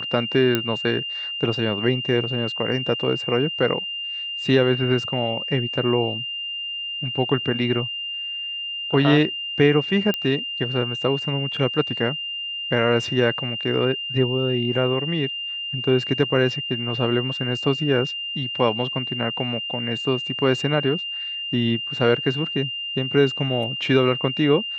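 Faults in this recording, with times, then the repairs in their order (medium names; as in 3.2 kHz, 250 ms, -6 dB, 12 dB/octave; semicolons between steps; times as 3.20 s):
whine 2.8 kHz -27 dBFS
0.55 s: pop -6 dBFS
10.14 s: pop -11 dBFS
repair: de-click; band-stop 2.8 kHz, Q 30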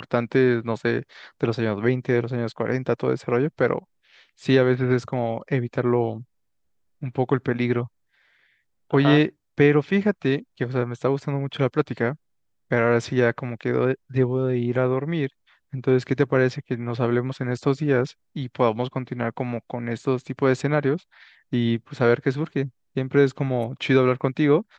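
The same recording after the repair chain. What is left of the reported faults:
nothing left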